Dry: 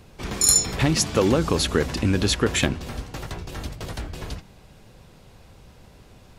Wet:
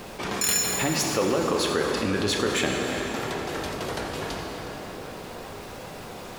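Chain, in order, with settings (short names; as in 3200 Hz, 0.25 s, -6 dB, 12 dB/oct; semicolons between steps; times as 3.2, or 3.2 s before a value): tracing distortion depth 0.051 ms; HPF 740 Hz 6 dB/oct; tilt shelf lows +4.5 dB, about 1400 Hz; added noise pink -64 dBFS; on a send: tape echo 0.366 s, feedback 72%, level -13.5 dB, low-pass 2400 Hz; on the sum: plate-style reverb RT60 2.5 s, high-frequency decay 0.85×, DRR 2.5 dB; fast leveller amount 50%; gain -4 dB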